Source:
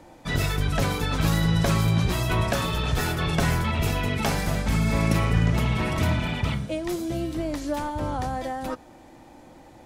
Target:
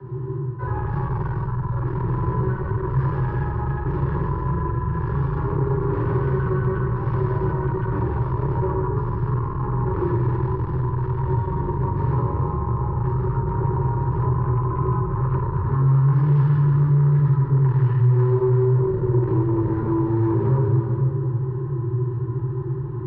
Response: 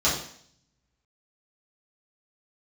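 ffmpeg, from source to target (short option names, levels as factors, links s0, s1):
-filter_complex "[0:a]asplit=2[s0][s1];[s1]acrusher=bits=5:mix=0:aa=0.000001,volume=0.398[s2];[s0][s2]amix=inputs=2:normalize=0[s3];[1:a]atrim=start_sample=2205,asetrate=26901,aresample=44100[s4];[s3][s4]afir=irnorm=-1:irlink=0,areverse,acompressor=threshold=0.355:ratio=12,areverse,aeval=exprs='0.794*(cos(1*acos(clip(val(0)/0.794,-1,1)))-cos(1*PI/2))+0.2*(cos(5*acos(clip(val(0)/0.794,-1,1)))-cos(5*PI/2))':c=same,asplit=3[s5][s6][s7];[s5]bandpass=f=300:t=q:w=8,volume=1[s8];[s6]bandpass=f=870:t=q:w=8,volume=0.501[s9];[s7]bandpass=f=2240:t=q:w=8,volume=0.355[s10];[s8][s9][s10]amix=inputs=3:normalize=0,equalizer=f=870:w=2.1:g=-3,asetrate=18846,aresample=44100,acrossover=split=130|670[s11][s12][s13];[s11]acompressor=threshold=0.0282:ratio=4[s14];[s12]acompressor=threshold=0.0562:ratio=4[s15];[s13]acompressor=threshold=0.0112:ratio=4[s16];[s14][s15][s16]amix=inputs=3:normalize=0,volume=2"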